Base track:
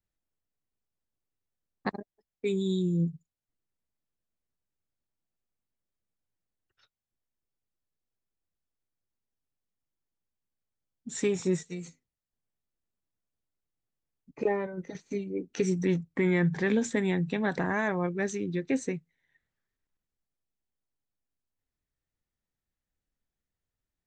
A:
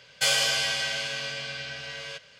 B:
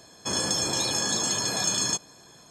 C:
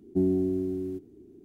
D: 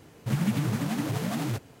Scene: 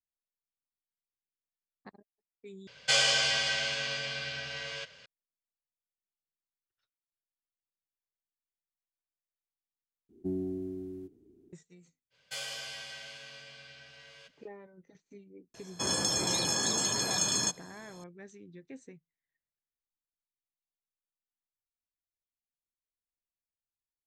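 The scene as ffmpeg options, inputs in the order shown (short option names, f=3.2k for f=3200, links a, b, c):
-filter_complex "[1:a]asplit=2[a][b];[0:a]volume=-19dB[c];[a]lowpass=f=7.9k:w=0.5412,lowpass=f=7.9k:w=1.3066[d];[c]asplit=3[e][f][g];[e]atrim=end=2.674[h];[d]atrim=end=2.39,asetpts=PTS-STARTPTS,volume=-1.5dB[i];[f]atrim=start=5.056:end=10.094[j];[3:a]atrim=end=1.44,asetpts=PTS-STARTPTS,volume=-9.5dB[k];[g]atrim=start=11.526[l];[b]atrim=end=2.39,asetpts=PTS-STARTPTS,volume=-16dB,afade=t=in:d=0.05,afade=t=out:st=2.34:d=0.05,adelay=12100[m];[2:a]atrim=end=2.5,asetpts=PTS-STARTPTS,volume=-3.5dB,afade=t=in:d=0.004:c=hsin,afade=t=out:st=2.496:d=0.004:c=hsin,adelay=15540[n];[h][i]acrossfade=d=0.004:c1=hsin:c2=hsin[o];[o][j]acrossfade=d=0.004:c1=hsin:c2=hsin[p];[p][k]acrossfade=d=0.004:c1=hsin:c2=hsin[q];[q][l]acrossfade=d=0.004:c1=hsin:c2=hsin[r];[r][m][n]amix=inputs=3:normalize=0"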